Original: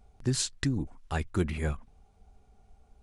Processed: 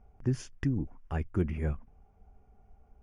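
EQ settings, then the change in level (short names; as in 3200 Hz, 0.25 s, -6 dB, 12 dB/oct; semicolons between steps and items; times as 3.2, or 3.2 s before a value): dynamic EQ 1100 Hz, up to -6 dB, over -47 dBFS, Q 0.7; running mean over 11 samples; 0.0 dB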